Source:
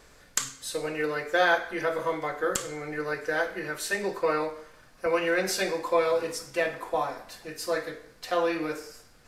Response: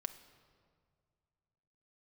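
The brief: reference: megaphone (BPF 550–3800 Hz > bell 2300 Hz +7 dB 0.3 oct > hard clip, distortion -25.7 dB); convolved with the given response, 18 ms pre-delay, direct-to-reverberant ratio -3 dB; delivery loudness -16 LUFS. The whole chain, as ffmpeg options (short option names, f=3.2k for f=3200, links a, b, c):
-filter_complex "[0:a]asplit=2[a][b];[1:a]atrim=start_sample=2205,adelay=18[c];[b][c]afir=irnorm=-1:irlink=0,volume=5dB[d];[a][d]amix=inputs=2:normalize=0,highpass=550,lowpass=3.8k,equalizer=f=2.3k:t=o:w=0.3:g=7,asoftclip=type=hard:threshold=-11.5dB,volume=9.5dB"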